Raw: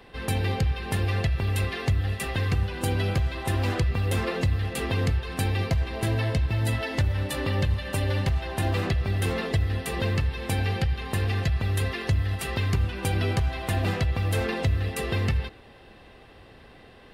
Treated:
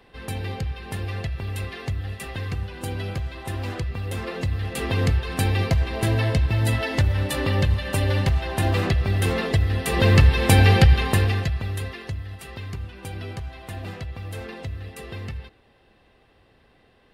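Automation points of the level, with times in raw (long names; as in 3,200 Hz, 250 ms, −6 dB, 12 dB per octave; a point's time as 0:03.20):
0:04.17 −4 dB
0:05.09 +4 dB
0:09.76 +4 dB
0:10.21 +11.5 dB
0:10.98 +11.5 dB
0:11.49 0 dB
0:12.26 −8.5 dB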